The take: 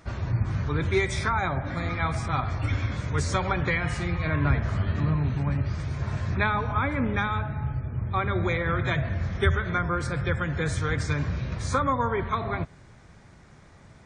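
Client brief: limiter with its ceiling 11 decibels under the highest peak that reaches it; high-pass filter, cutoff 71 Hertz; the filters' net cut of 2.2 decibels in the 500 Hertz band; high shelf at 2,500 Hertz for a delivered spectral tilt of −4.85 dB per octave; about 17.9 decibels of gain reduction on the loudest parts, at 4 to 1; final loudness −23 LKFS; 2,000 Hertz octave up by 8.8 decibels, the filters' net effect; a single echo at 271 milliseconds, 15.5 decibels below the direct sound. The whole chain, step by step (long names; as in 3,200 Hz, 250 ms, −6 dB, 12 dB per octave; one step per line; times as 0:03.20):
high-pass filter 71 Hz
parametric band 500 Hz −3.5 dB
parametric band 2,000 Hz +8.5 dB
high-shelf EQ 2,500 Hz +6 dB
downward compressor 4 to 1, threshold −37 dBFS
brickwall limiter −31.5 dBFS
single-tap delay 271 ms −15.5 dB
level +17.5 dB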